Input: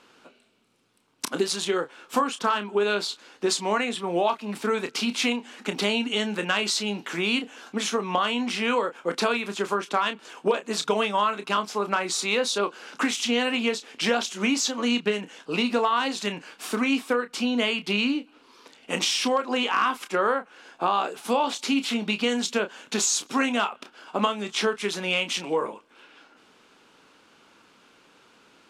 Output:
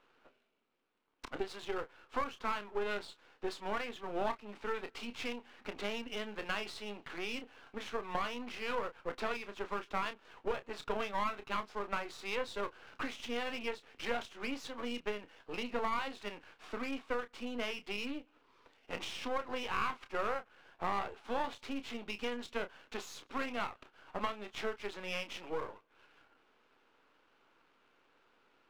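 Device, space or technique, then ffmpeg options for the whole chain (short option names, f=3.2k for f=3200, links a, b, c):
crystal radio: -af "highpass=310,lowpass=2.6k,aeval=exprs='if(lt(val(0),0),0.251*val(0),val(0))':c=same,volume=-8dB"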